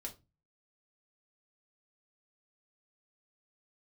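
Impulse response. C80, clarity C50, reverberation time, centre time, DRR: 23.0 dB, 15.0 dB, 0.25 s, 10 ms, 0.5 dB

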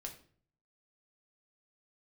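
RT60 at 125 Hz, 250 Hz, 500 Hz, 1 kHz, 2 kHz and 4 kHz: 0.85 s, 0.65 s, 0.55 s, 0.45 s, 0.40 s, 0.40 s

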